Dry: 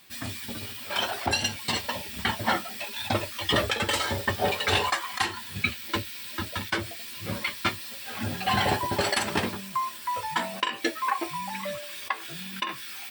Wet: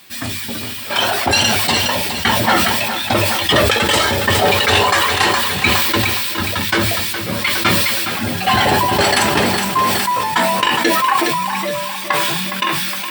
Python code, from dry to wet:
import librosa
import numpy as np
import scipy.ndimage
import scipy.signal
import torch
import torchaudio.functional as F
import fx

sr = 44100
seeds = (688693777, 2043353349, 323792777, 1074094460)

p1 = scipy.signal.sosfilt(scipy.signal.butter(2, 67.0, 'highpass', fs=sr, output='sos'), x)
p2 = fx.hum_notches(p1, sr, base_hz=50, count=4)
p3 = 10.0 ** (-19.0 / 20.0) * (np.abs((p2 / 10.0 ** (-19.0 / 20.0) + 3.0) % 4.0 - 2.0) - 1.0)
p4 = p2 + F.gain(torch.from_numpy(p3), -7.5).numpy()
p5 = fx.echo_feedback(p4, sr, ms=414, feedback_pct=47, wet_db=-9)
p6 = fx.sustainer(p5, sr, db_per_s=21.0)
y = F.gain(torch.from_numpy(p6), 7.5).numpy()